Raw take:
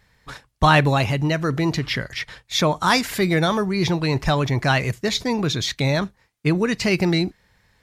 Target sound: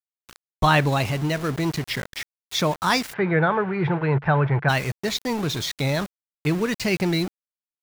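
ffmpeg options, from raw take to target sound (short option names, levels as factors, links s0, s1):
-filter_complex "[0:a]aeval=exprs='val(0)*gte(abs(val(0)),0.0422)':c=same,asplit=3[s0][s1][s2];[s0]afade=t=out:st=3.12:d=0.02[s3];[s1]highpass=110,equalizer=f=140:t=q:w=4:g=8,equalizer=f=250:t=q:w=4:g=-9,equalizer=f=460:t=q:w=4:g=5,equalizer=f=870:t=q:w=4:g=6,equalizer=f=1500:t=q:w=4:g=8,lowpass=f=2400:w=0.5412,lowpass=f=2400:w=1.3066,afade=t=in:st=3.12:d=0.02,afade=t=out:st=4.68:d=0.02[s4];[s2]afade=t=in:st=4.68:d=0.02[s5];[s3][s4][s5]amix=inputs=3:normalize=0,volume=0.708"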